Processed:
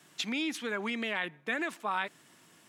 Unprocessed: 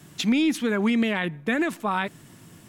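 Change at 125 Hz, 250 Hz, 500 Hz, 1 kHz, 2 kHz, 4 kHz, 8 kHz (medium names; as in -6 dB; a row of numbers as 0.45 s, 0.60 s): -17.5 dB, -14.5 dB, -10.0 dB, -6.0 dB, -5.0 dB, -5.0 dB, -6.5 dB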